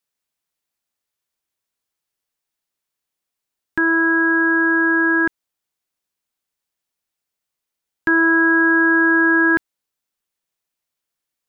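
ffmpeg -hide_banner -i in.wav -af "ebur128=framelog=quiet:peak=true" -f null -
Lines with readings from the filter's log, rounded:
Integrated loudness:
  I:         -15.2 LUFS
  Threshold: -25.3 LUFS
Loudness range:
  LRA:         8.2 LU
  Threshold: -38.7 LUFS
  LRA low:   -24.7 LUFS
  LRA high:  -16.5 LUFS
True peak:
  Peak:       -9.0 dBFS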